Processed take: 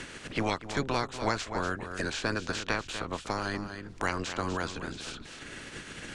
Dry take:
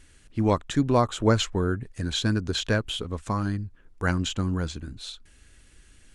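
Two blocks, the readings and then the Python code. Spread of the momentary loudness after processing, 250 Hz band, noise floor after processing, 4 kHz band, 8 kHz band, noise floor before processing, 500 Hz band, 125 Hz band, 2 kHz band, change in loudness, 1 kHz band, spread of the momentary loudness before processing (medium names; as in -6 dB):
11 LU, -9.0 dB, -47 dBFS, -6.5 dB, -4.5 dB, -55 dBFS, -6.5 dB, -12.0 dB, +0.5 dB, -7.0 dB, -2.5 dB, 14 LU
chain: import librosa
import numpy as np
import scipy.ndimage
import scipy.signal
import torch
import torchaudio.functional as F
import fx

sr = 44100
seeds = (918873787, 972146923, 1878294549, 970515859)

p1 = fx.spec_clip(x, sr, under_db=23)
p2 = scipy.signal.sosfilt(scipy.signal.butter(2, 6400.0, 'lowpass', fs=sr, output='sos'), p1)
p3 = p2 + fx.echo_single(p2, sr, ms=242, db=-12.5, dry=0)
p4 = fx.band_squash(p3, sr, depth_pct=70)
y = F.gain(torch.from_numpy(p4), -6.5).numpy()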